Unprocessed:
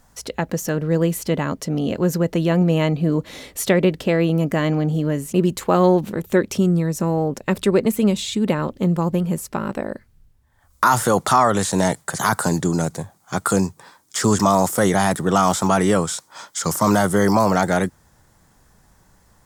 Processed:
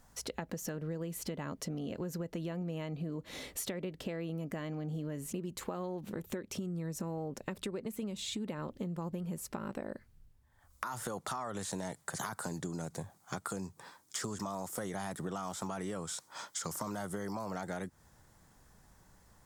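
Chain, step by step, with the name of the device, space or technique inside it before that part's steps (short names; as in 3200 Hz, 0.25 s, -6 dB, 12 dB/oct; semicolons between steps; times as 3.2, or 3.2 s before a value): serial compression, peaks first (compressor, threshold -24 dBFS, peak gain reduction 13 dB; compressor 2.5:1, threshold -30 dBFS, peak gain reduction 7 dB); gain -7 dB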